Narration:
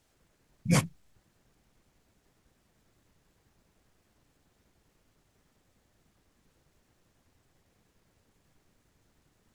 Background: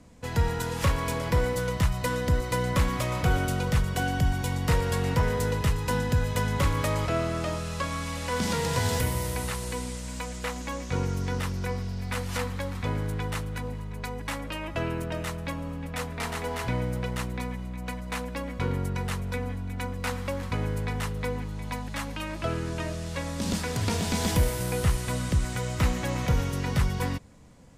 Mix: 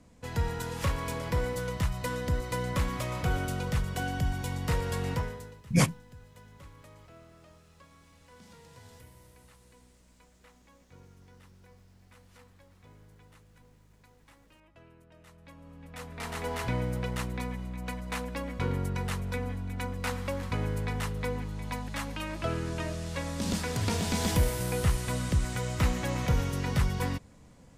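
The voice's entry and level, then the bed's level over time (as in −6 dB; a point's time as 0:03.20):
5.05 s, +1.5 dB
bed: 0:05.14 −5 dB
0:05.64 −26.5 dB
0:15.07 −26.5 dB
0:16.46 −2 dB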